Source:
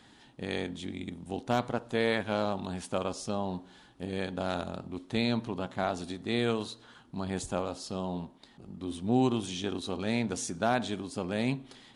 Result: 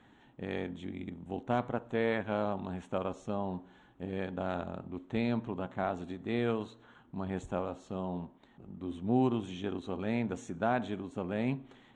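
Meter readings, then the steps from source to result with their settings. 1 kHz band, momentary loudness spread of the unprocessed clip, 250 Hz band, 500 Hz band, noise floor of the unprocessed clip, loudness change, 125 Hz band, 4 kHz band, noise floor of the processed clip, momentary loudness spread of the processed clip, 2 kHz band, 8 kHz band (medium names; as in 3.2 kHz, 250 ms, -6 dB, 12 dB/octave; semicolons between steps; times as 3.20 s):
-2.5 dB, 11 LU, -2.0 dB, -2.0 dB, -58 dBFS, -2.5 dB, -2.0 dB, -11.5 dB, -61 dBFS, 10 LU, -4.5 dB, under -15 dB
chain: boxcar filter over 9 samples; trim -2 dB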